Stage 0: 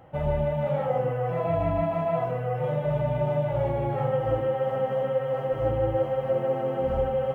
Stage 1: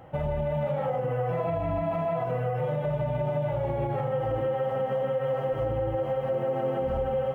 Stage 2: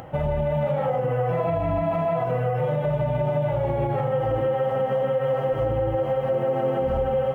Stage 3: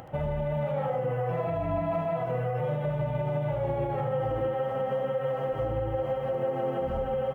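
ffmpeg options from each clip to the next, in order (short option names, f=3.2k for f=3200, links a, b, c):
-af "alimiter=limit=-23.5dB:level=0:latency=1:release=100,volume=3dB"
-af "acompressor=mode=upward:threshold=-40dB:ratio=2.5,volume=4.5dB"
-af "aecho=1:1:75:0.316,volume=-5.5dB"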